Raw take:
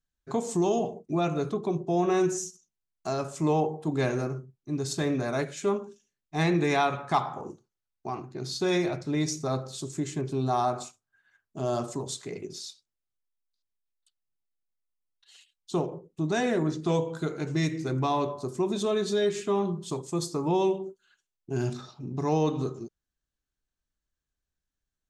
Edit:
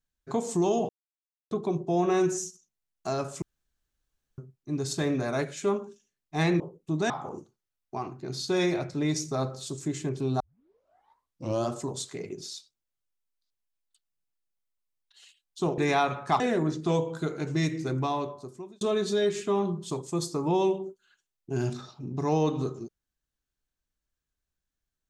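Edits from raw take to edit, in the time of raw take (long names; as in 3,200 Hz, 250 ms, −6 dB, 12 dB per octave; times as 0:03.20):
0:00.89–0:01.51: silence
0:03.42–0:04.38: fill with room tone
0:06.60–0:07.22: swap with 0:15.90–0:16.40
0:10.52: tape start 1.27 s
0:17.88–0:18.81: fade out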